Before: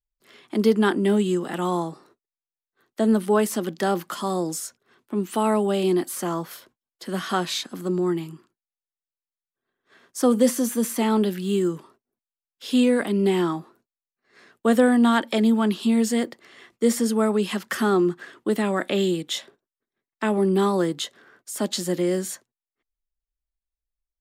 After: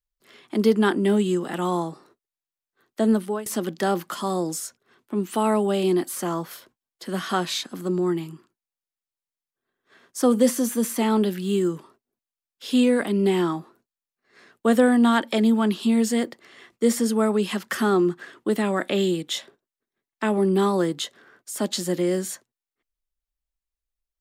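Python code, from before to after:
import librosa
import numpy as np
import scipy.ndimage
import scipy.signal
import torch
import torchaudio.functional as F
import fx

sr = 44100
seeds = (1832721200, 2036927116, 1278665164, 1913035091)

y = fx.edit(x, sr, fx.fade_out_to(start_s=3.11, length_s=0.35, floor_db=-20.5), tone=tone)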